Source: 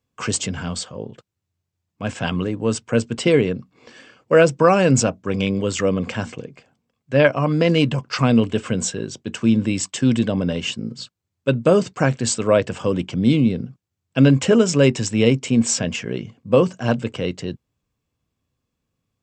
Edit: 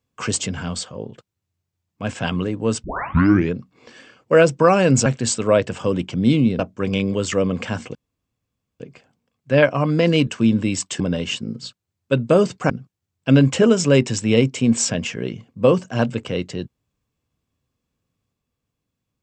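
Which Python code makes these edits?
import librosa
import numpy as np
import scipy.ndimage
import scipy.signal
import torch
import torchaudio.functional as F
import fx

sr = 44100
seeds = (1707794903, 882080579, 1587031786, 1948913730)

y = fx.edit(x, sr, fx.tape_start(start_s=2.84, length_s=0.7),
    fx.insert_room_tone(at_s=6.42, length_s=0.85),
    fx.cut(start_s=7.89, length_s=1.41),
    fx.cut(start_s=10.03, length_s=0.33),
    fx.move(start_s=12.06, length_s=1.53, to_s=5.06), tone=tone)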